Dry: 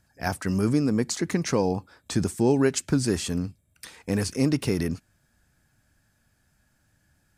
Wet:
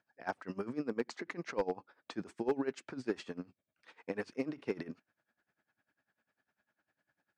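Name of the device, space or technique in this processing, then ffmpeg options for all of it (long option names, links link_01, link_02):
helicopter radio: -af "highpass=340,lowpass=2600,aeval=exprs='val(0)*pow(10,-20*(0.5-0.5*cos(2*PI*10*n/s))/20)':channel_layout=same,asoftclip=type=hard:threshold=-20.5dB,volume=-3dB"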